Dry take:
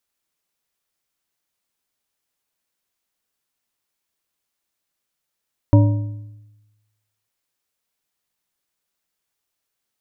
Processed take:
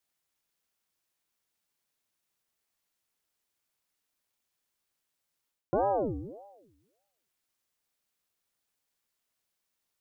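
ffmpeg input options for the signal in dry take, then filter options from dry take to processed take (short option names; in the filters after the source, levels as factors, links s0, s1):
-f lavfi -i "aevalsrc='0.447*pow(10,-3*t/1.13)*sin(2*PI*106*t)+0.224*pow(10,-3*t/0.834)*sin(2*PI*292.2*t)+0.112*pow(10,-3*t/0.681)*sin(2*PI*572.8*t)+0.0562*pow(10,-3*t/0.586)*sin(2*PI*946.9*t)':d=1.55:s=44100"
-af "areverse,acompressor=threshold=0.0708:ratio=6,areverse,aeval=exprs='val(0)*sin(2*PI*440*n/s+440*0.6/1.7*sin(2*PI*1.7*n/s))':c=same"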